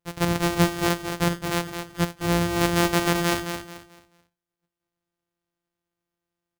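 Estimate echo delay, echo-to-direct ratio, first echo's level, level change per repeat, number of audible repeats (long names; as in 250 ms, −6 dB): 218 ms, −7.0 dB, −7.5 dB, −10.5 dB, 3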